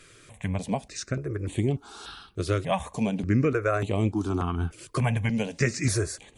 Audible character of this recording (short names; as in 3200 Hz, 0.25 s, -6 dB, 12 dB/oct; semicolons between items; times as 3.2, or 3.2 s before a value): notches that jump at a steady rate 3.4 Hz 220–5100 Hz